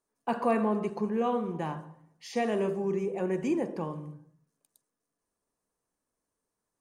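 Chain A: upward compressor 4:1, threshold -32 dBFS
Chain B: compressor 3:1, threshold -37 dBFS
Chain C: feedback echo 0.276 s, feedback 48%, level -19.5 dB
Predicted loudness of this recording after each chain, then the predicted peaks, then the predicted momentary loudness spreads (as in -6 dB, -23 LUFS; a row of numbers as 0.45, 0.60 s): -31.0, -39.5, -30.5 LUFS; -15.0, -23.5, -15.0 dBFS; 19, 9, 14 LU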